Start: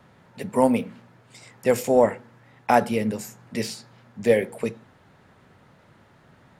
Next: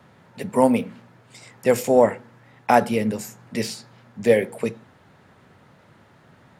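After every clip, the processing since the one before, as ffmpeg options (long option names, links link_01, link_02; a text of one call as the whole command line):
ffmpeg -i in.wav -af "highpass=62,volume=2dB" out.wav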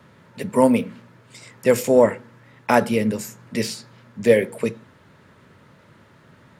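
ffmpeg -i in.wav -af "equalizer=frequency=760:width=7.6:gain=-12.5,volume=2dB" out.wav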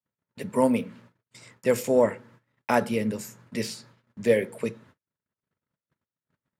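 ffmpeg -i in.wav -af "agate=range=-43dB:threshold=-46dB:ratio=16:detection=peak,volume=-6dB" out.wav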